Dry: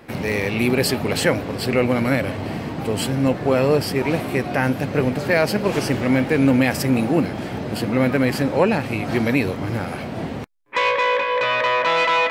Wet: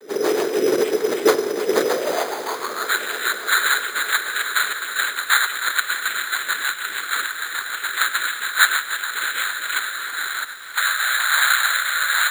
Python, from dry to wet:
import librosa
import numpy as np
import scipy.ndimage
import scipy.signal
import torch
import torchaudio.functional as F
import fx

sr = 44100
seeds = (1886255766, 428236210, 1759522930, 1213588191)

p1 = fx.rattle_buzz(x, sr, strikes_db=-22.0, level_db=-10.0)
p2 = fx.rider(p1, sr, range_db=5, speed_s=0.5)
p3 = fx.noise_vocoder(p2, sr, seeds[0], bands=3)
p4 = fx.vibrato(p3, sr, rate_hz=1.4, depth_cents=45.0)
p5 = fx.rotary_switch(p4, sr, hz=6.7, then_hz=1.0, switch_at_s=9.03)
p6 = fx.filter_sweep_highpass(p5, sr, from_hz=420.0, to_hz=1500.0, start_s=1.77, end_s=2.93, q=5.1)
p7 = np.repeat(scipy.signal.resample_poly(p6, 1, 8), 8)[:len(p6)]
p8 = p7 + fx.echo_feedback(p7, sr, ms=99, feedback_pct=44, wet_db=-17.0, dry=0)
p9 = fx.echo_crushed(p8, sr, ms=313, feedback_pct=80, bits=7, wet_db=-14.0)
y = F.gain(torch.from_numpy(p9), -2.5).numpy()